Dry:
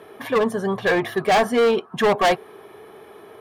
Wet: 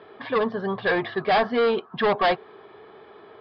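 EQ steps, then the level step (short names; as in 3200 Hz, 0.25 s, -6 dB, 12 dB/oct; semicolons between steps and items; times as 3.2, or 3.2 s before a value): rippled Chebyshev low-pass 5000 Hz, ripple 3 dB; -1.5 dB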